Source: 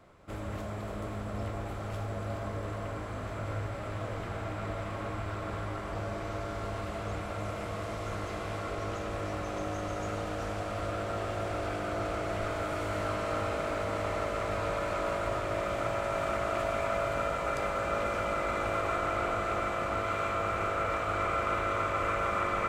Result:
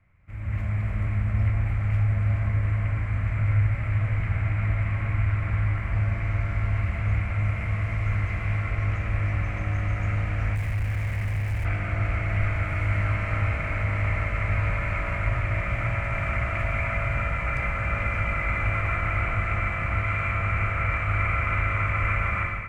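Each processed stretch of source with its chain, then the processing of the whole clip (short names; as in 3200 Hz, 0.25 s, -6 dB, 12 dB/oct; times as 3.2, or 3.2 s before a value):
10.55–11.65 EQ curve 110 Hz 0 dB, 160 Hz -1 dB, 250 Hz -12 dB, 360 Hz -3 dB, 600 Hz -4 dB, 1000 Hz -17 dB, 1700 Hz -15 dB, 3200 Hz -14 dB, 8900 Hz +12 dB + Schmitt trigger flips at -50 dBFS
whole clip: EQ curve 110 Hz 0 dB, 400 Hz -24 dB, 1400 Hz -14 dB, 2200 Hz -1 dB, 3500 Hz -24 dB; AGC gain up to 14 dB; gain +1.5 dB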